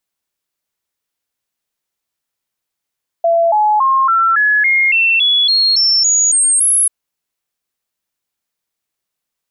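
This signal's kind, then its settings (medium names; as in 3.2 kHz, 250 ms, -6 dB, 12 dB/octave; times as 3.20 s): stepped sine 673 Hz up, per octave 3, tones 13, 0.28 s, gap 0.00 s -9 dBFS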